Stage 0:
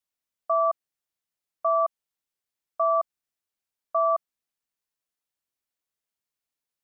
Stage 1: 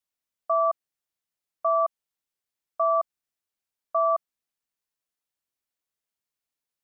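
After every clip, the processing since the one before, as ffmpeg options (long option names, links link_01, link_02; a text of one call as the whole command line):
ffmpeg -i in.wav -af anull out.wav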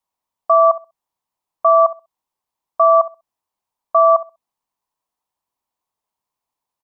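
ffmpeg -i in.wav -filter_complex "[0:a]firequalizer=gain_entry='entry(530,0);entry(970,13);entry(1400,-5)':delay=0.05:min_phase=1,asplit=2[link_01][link_02];[link_02]adelay=65,lowpass=frequency=840:poles=1,volume=-13.5dB,asplit=2[link_03][link_04];[link_04]adelay=65,lowpass=frequency=840:poles=1,volume=0.26,asplit=2[link_05][link_06];[link_06]adelay=65,lowpass=frequency=840:poles=1,volume=0.26[link_07];[link_01][link_03][link_05][link_07]amix=inputs=4:normalize=0,volume=6.5dB" out.wav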